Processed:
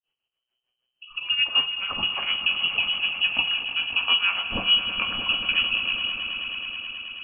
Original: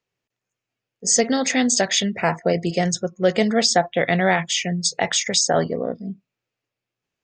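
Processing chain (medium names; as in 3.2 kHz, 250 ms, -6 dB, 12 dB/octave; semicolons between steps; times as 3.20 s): bass shelf 450 Hz +7 dB; compression, threshold -16 dBFS, peak gain reduction 8 dB; rotary cabinet horn 5.5 Hz, later 0.8 Hz, at 0.82 s; granulator 175 ms, grains 6.7 per s, spray 10 ms, pitch spread up and down by 0 st; echo with a slow build-up 107 ms, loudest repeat 5, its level -13 dB; on a send at -8 dB: reverberation RT60 0.45 s, pre-delay 7 ms; on the sum: frequency inversion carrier 3.1 kHz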